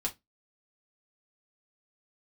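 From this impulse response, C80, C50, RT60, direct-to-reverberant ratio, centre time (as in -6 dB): 30.0 dB, 18.5 dB, 0.15 s, -2.0 dB, 9 ms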